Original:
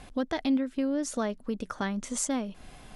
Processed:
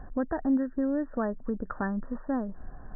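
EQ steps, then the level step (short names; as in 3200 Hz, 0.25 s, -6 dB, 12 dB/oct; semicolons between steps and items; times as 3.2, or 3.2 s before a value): brick-wall FIR low-pass 1900 Hz; low shelf 63 Hz +11 dB; 0.0 dB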